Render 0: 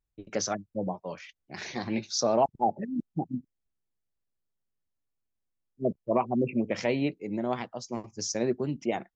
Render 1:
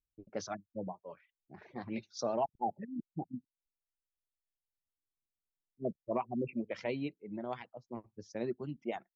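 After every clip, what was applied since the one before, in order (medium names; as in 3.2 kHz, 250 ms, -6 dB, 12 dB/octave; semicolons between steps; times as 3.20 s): level-controlled noise filter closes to 550 Hz, open at -22 dBFS; reverb removal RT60 1.2 s; trim -8 dB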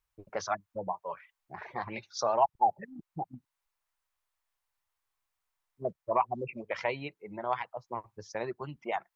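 in parallel at +2 dB: compression, threshold -43 dBFS, peak gain reduction 14.5 dB; on the sum: ten-band graphic EQ 250 Hz -12 dB, 1 kHz +11 dB, 2 kHz +4 dB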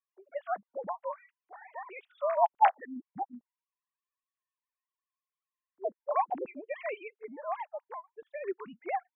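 formants replaced by sine waves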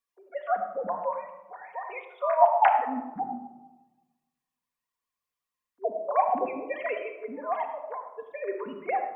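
reverberation RT60 1.1 s, pre-delay 4 ms, DRR 2 dB; trim +3.5 dB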